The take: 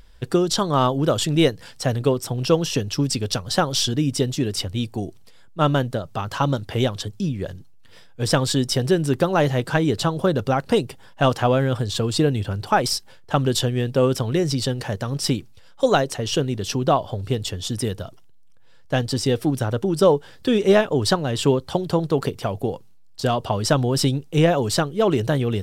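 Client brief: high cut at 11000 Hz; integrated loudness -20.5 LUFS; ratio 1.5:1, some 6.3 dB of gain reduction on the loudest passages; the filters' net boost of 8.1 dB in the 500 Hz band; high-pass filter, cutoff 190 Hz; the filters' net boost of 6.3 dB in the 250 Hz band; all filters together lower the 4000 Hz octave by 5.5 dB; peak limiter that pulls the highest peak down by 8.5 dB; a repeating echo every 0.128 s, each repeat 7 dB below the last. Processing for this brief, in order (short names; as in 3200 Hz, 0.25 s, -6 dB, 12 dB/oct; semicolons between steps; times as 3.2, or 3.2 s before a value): HPF 190 Hz; LPF 11000 Hz; bell 250 Hz +7 dB; bell 500 Hz +8 dB; bell 4000 Hz -7.5 dB; compressor 1.5:1, threshold -22 dBFS; limiter -11 dBFS; feedback echo 0.128 s, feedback 45%, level -7 dB; gain +2 dB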